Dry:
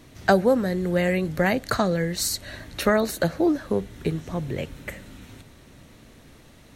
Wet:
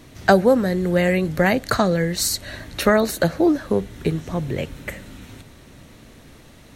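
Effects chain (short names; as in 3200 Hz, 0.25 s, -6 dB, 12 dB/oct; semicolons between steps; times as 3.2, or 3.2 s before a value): gain +4 dB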